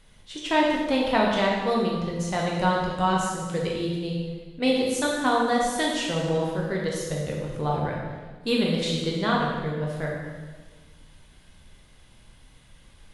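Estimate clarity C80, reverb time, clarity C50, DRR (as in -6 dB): 3.0 dB, 1.4 s, 1.0 dB, -3.0 dB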